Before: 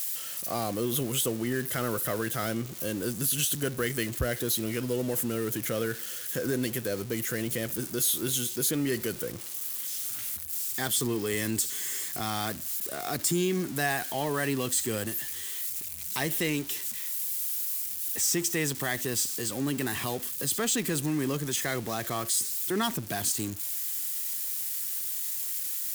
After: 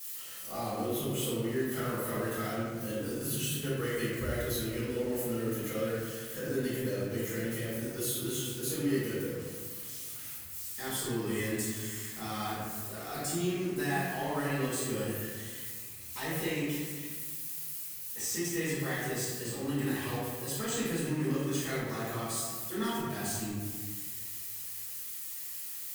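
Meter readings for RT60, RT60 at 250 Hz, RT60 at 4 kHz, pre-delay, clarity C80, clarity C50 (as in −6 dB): 1.6 s, 1.9 s, 1.0 s, 4 ms, 0.0 dB, −2.5 dB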